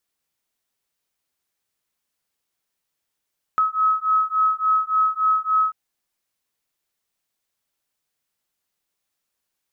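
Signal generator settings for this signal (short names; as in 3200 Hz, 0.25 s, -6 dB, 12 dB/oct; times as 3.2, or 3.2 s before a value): beating tones 1280 Hz, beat 3.5 Hz, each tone -20 dBFS 2.14 s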